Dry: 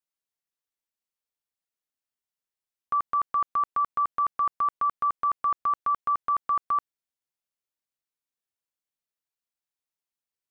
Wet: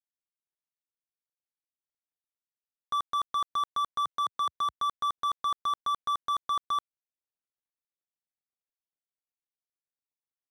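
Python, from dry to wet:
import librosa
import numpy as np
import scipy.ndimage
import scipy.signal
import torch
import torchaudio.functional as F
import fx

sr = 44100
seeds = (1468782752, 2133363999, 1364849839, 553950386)

y = scipy.signal.medfilt(x, 25)
y = fx.highpass(y, sr, hz=fx.line((4.06, 140.0), (4.72, 62.0)), slope=24, at=(4.06, 4.72), fade=0.02)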